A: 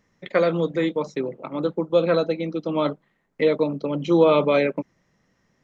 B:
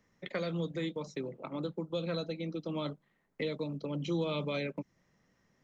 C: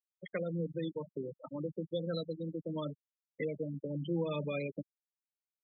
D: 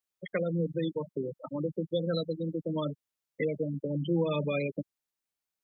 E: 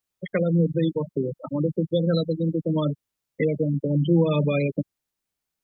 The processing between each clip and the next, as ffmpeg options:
ffmpeg -i in.wav -filter_complex "[0:a]acrossover=split=190|3000[link_01][link_02][link_03];[link_02]acompressor=threshold=-34dB:ratio=3[link_04];[link_01][link_04][link_03]amix=inputs=3:normalize=0,volume=-5dB" out.wav
ffmpeg -i in.wav -af "afftfilt=real='re*gte(hypot(re,im),0.0355)':imag='im*gte(hypot(re,im),0.0355)':win_size=1024:overlap=0.75,equalizer=frequency=260:width=1.5:gain=-2.5,bandreject=frequency=670:width=13" out.wav
ffmpeg -i in.wav -af "acontrast=48" out.wav
ffmpeg -i in.wav -af "lowshelf=frequency=280:gain=8.5,volume=4.5dB" out.wav

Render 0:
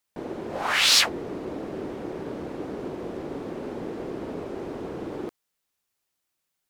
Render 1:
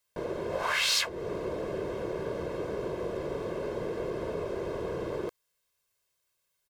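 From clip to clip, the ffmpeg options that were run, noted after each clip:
ffmpeg -i in.wav -af "aecho=1:1:1.9:0.69,acompressor=threshold=-29dB:ratio=2.5" out.wav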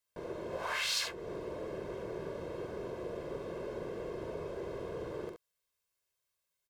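ffmpeg -i in.wav -af "aecho=1:1:44|69:0.398|0.447,volume=-8dB" out.wav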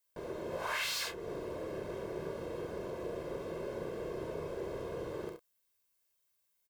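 ffmpeg -i in.wav -filter_complex "[0:a]highshelf=frequency=11000:gain=10.5,asplit=2[link_01][link_02];[link_02]adelay=31,volume=-9.5dB[link_03];[link_01][link_03]amix=inputs=2:normalize=0,acrossover=split=2400[link_04][link_05];[link_05]asoftclip=type=tanh:threshold=-35.5dB[link_06];[link_04][link_06]amix=inputs=2:normalize=0" out.wav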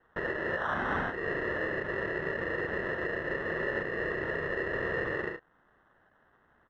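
ffmpeg -i in.wav -af "acrusher=samples=19:mix=1:aa=0.000001,alimiter=level_in=11dB:limit=-24dB:level=0:latency=1:release=369,volume=-11dB,lowpass=frequency=1800:width_type=q:width=4,volume=8.5dB" out.wav

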